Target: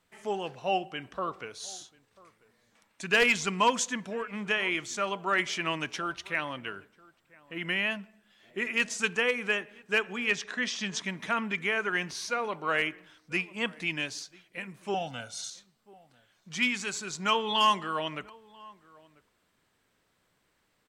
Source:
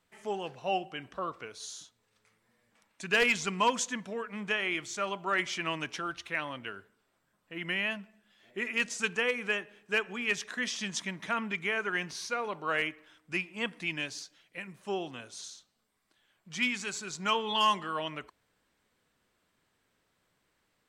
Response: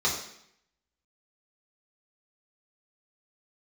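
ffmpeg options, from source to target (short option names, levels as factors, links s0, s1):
-filter_complex "[0:a]asettb=1/sr,asplit=3[s0][s1][s2];[s0]atrim=end=10.304[s3];[s1]atrim=start=10.3:end=11.05,asetpts=PTS-STARTPTS,afade=t=in:d=0.004:c=qsin,afade=t=out:st=0.746:d=0.004:c=qsin,lowpass=6500[s4];[s2]atrim=start=11.046[s5];[s3][s4]acrossfade=d=0.004:c1=hsin:c2=qsin[s6];[s6][s5]acrossfade=d=0.004:c1=qsin:c2=hsin,asettb=1/sr,asplit=3[s7][s8][s9];[s7]atrim=end=14.944[s10];[s8]atrim=start=14.94:end=15.5,asetpts=PTS-STARTPTS,afade=t=in:d=0.004:c=qsin,afade=t=out:st=0.556:d=0.004:c=qsin,aecho=1:1:1.4:0.99,atrim=end_sample=24696[s11];[s9]atrim=start=15.496[s12];[s10][s11]acrossfade=d=0.004:c1=hsin:c2=qsin[s13];[s13][s12]acrossfade=d=0.004:c1=qsin:c2=hsin,asplit=2[s14][s15];[s15]adelay=991.3,volume=0.0708,highshelf=f=4000:g=-22.3[s16];[s14][s16]amix=inputs=2:normalize=0,volume=1.33"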